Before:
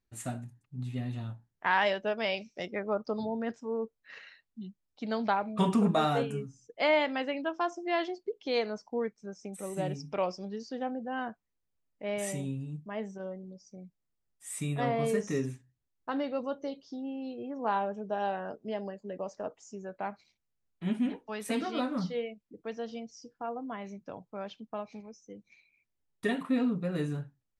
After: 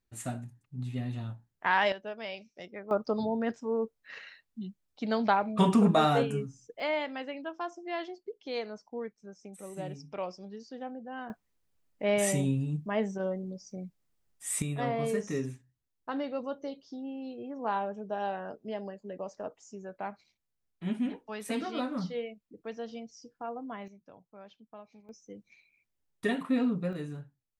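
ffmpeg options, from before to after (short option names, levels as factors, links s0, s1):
-af "asetnsamples=n=441:p=0,asendcmd='1.92 volume volume -8dB;2.91 volume volume 3dB;6.8 volume volume -5.5dB;11.3 volume volume 7dB;14.62 volume volume -1.5dB;23.88 volume volume -11dB;25.09 volume volume 0.5dB;26.93 volume volume -6dB',volume=1.06"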